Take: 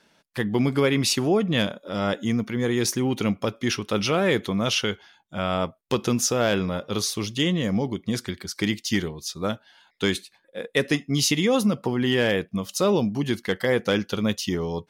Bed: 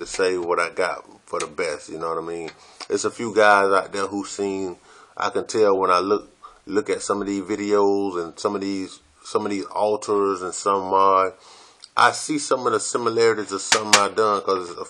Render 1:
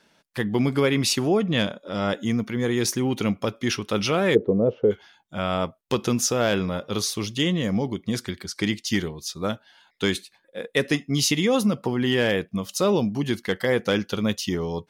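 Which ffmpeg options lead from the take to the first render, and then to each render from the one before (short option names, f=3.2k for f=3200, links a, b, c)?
-filter_complex "[0:a]asettb=1/sr,asplit=3[a][b][c];[a]atrim=end=1.414[d];[b]atrim=start=1.41:end=2.1,asetpts=PTS-STARTPTS,afade=t=in:d=0.004:c=qsin,afade=t=out:st=0.686:d=0.004:c=qsin,lowpass=9.5k[e];[c]atrim=start=2.096[f];[d][e]acrossfade=d=0.004:c1=hsin:c2=qsin[g];[g][f]acrossfade=d=0.004:c1=qsin:c2=hsin,asplit=3[h][i][j];[h]afade=t=out:st=4.34:d=0.02[k];[i]lowpass=f=470:t=q:w=4.3,afade=t=in:st=4.34:d=0.02,afade=t=out:st=4.9:d=0.02[l];[j]afade=t=in:st=4.9:d=0.02[m];[k][l][m]amix=inputs=3:normalize=0,asettb=1/sr,asplit=3[n][o][p];[n]atrim=end=8.474[q];[o]atrim=start=8.47:end=8.87,asetpts=PTS-STARTPTS,afade=t=in:d=0.004:c=qsin,afade=t=out:st=0.396:d=0.004:c=qsin,lowpass=11k[r];[p]atrim=start=8.866[s];[q][r]acrossfade=d=0.004:c1=hsin:c2=qsin[t];[t][s]acrossfade=d=0.004:c1=qsin:c2=hsin"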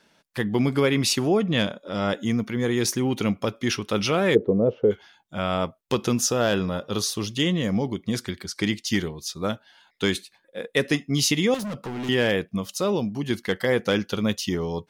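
-filter_complex "[0:a]asettb=1/sr,asplit=3[a][b][c];[a]atrim=end=6.184[d];[b]atrim=start=6.18:end=7.3,asetpts=PTS-STARTPTS,afade=t=in:d=0.004:c=qsin,afade=t=out:st=1.116:d=0.004:c=qsin,bandreject=f=2.2k:w=6.3[e];[c]atrim=start=7.296[f];[d][e]acrossfade=d=0.004:c1=hsin:c2=qsin[g];[g][f]acrossfade=d=0.004:c1=qsin:c2=hsin,asettb=1/sr,asplit=3[h][i][j];[h]atrim=end=11.544[k];[i]atrim=start=11.54:end=12.09,asetpts=PTS-STARTPTS,afade=t=in:d=0.004:c=qsin,afade=t=out:st=0.546:d=0.004:c=qsin,volume=29dB,asoftclip=hard,volume=-29dB[l];[j]atrim=start=12.086[m];[k][l]acrossfade=d=0.004:c1=hsin:c2=qsin[n];[n][m]acrossfade=d=0.004:c1=qsin:c2=hsin,asplit=3[o][p][q];[o]atrim=end=12.712[r];[p]atrim=start=12.708:end=13.302,asetpts=PTS-STARTPTS,volume=-3dB[s];[q]atrim=start=13.298[t];[r][s]acrossfade=d=0.004:c1=hsin:c2=hsin[u];[u][t]acrossfade=d=0.004:c1=hsin:c2=hsin"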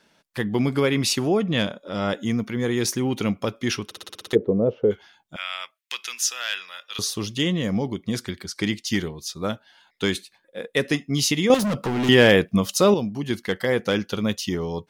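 -filter_complex "[0:a]asettb=1/sr,asplit=3[a][b][c];[a]atrim=end=5.364[d];[b]atrim=start=5.36:end=6.99,asetpts=PTS-STARTPTS,afade=t=in:d=0.004:c=qsin,afade=t=out:st=1.626:d=0.004:c=qsin,highpass=f=2.1k:t=q:w=1.8[e];[c]atrim=start=6.986[f];[d][e]acrossfade=d=0.004:c1=hsin:c2=qsin[g];[g][f]acrossfade=d=0.004:c1=qsin:c2=hsin,asplit=11[h][i][j][k][l][m][n][o][p][q][r];[h]atrim=end=3.912[s];[i]atrim=start=3.848:end=3.912[t];[j]atrim=start=3.848:end=3.912[u];[k]atrim=start=3.848:end=3.912[v];[l]atrim=start=3.848:end=3.912[w];[m]atrim=start=3.848:end=3.912[x];[n]atrim=start=3.848:end=3.912[y];[o]atrim=start=3.848:end=3.912[z];[p]atrim=start=4.328:end=11.502[aa];[q]atrim=start=11.498:end=12.942,asetpts=PTS-STARTPTS,volume=7.5dB[ab];[r]atrim=start=12.938[ac];[s][t]acrossfade=d=0.004:c1=hsin:c2=hsin[ad];[ad][u]acrossfade=d=0.004:c1=hsin:c2=hsin[ae];[ae][v]acrossfade=d=0.004:c1=hsin:c2=hsin[af];[af][w]acrossfade=d=0.004:c1=hsin:c2=hsin[ag];[ag][x]acrossfade=d=0.004:c1=hsin:c2=hsin[ah];[ah][y]acrossfade=d=0.004:c1=hsin:c2=hsin[ai];[ai][z]acrossfade=d=0.004:c1=hsin:c2=hsin[aj];[aj][aa]acrossfade=d=0.004:c1=hsin:c2=hsin[ak];[ak][ab]acrossfade=d=0.004:c1=hsin:c2=hsin[al];[al][ac]acrossfade=d=0.004:c1=hsin:c2=hsin"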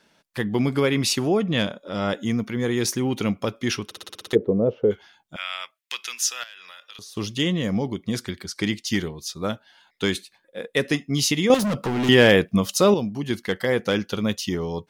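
-filter_complex "[0:a]asettb=1/sr,asplit=3[a][b][c];[a]atrim=end=6.434[d];[b]atrim=start=6.43:end=7.17,asetpts=PTS-STARTPTS,afade=t=in:d=0.004:c=qsin,afade=t=out:st=0.736:d=0.004:c=qsin,acompressor=threshold=-38dB:ratio=12:attack=3.2:release=140:knee=1:detection=peak[e];[c]atrim=start=7.166[f];[d][e]acrossfade=d=0.004:c1=hsin:c2=qsin[g];[g][f]acrossfade=d=0.004:c1=qsin:c2=hsin"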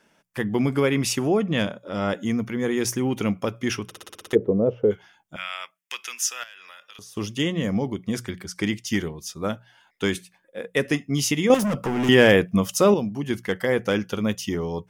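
-af "equalizer=f=4.1k:t=o:w=0.41:g=-11.5,bandreject=f=60:t=h:w=6,bandreject=f=120:t=h:w=6,bandreject=f=180:t=h:w=6"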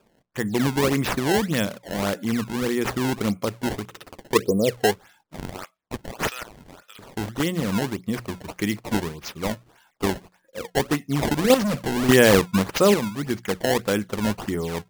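-af "acrusher=samples=21:mix=1:aa=0.000001:lfo=1:lforange=33.6:lforate=1.7"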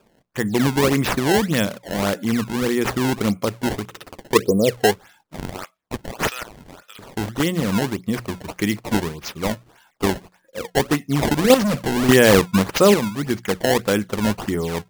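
-af "volume=3.5dB,alimiter=limit=-2dB:level=0:latency=1"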